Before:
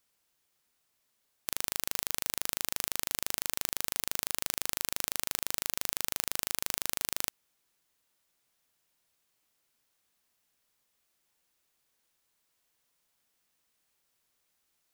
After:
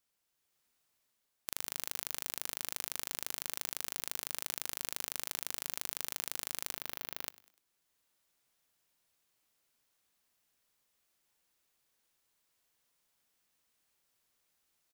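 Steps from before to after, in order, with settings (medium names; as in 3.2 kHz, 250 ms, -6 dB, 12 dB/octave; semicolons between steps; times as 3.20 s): 6.71–7.26 s: peaking EQ 8.1 kHz -14.5 dB 0.97 oct; frequency-shifting echo 99 ms, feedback 45%, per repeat +82 Hz, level -21 dB; level rider gain up to 5 dB; trim -6.5 dB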